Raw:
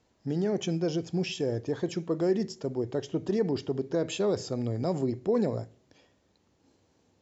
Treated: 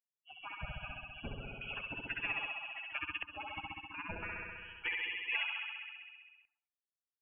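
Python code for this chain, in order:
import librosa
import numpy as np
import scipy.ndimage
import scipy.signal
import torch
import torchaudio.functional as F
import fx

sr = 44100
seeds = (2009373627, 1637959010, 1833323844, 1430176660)

y = fx.bin_expand(x, sr, power=3.0)
y = fx.room_flutter(y, sr, wall_m=11.3, rt60_s=1.2)
y = fx.dynamic_eq(y, sr, hz=1100.0, q=2.9, threshold_db=-58.0, ratio=4.0, max_db=-5)
y = fx.filter_lfo_highpass(y, sr, shape='square', hz=0.31, low_hz=630.0, high_hz=1800.0, q=0.78)
y = fx.formant_shift(y, sr, semitones=4)
y = fx.freq_invert(y, sr, carrier_hz=3100)
y = fx.low_shelf(y, sr, hz=85.0, db=7.5)
y = fx.spectral_comp(y, sr, ratio=2.0)
y = y * 10.0 ** (1.5 / 20.0)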